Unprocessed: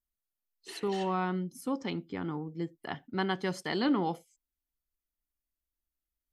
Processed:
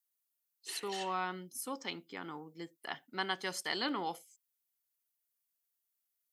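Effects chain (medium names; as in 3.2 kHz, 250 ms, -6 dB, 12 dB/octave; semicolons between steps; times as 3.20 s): high-pass 990 Hz 6 dB/octave; treble shelf 6.5 kHz +10 dB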